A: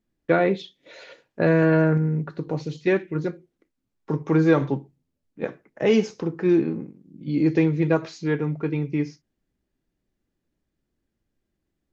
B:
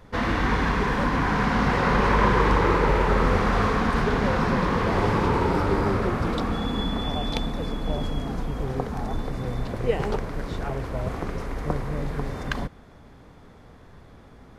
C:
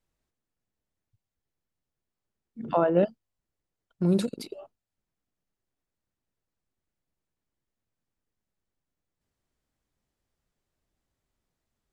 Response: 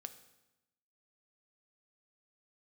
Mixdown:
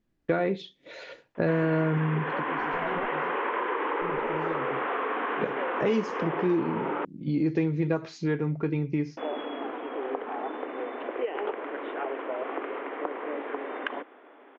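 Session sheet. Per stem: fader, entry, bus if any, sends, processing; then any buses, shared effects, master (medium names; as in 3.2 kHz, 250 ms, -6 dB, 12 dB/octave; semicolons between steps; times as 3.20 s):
+2.0 dB, 0.00 s, no bus, no send, treble shelf 6.1 kHz -9.5 dB; auto duck -18 dB, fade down 0.30 s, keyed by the third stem
+1.5 dB, 1.35 s, muted 7.05–9.17 s, bus A, no send, steep high-pass 290 Hz 48 dB/octave
-4.5 dB, 0.00 s, bus A, no send, comb filter that takes the minimum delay 7.8 ms
bus A: 0.0 dB, steep low-pass 3.2 kHz 72 dB/octave; compression 3:1, threshold -26 dBFS, peak gain reduction 8 dB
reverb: none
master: compression 2.5:1, threshold -26 dBFS, peak gain reduction 9.5 dB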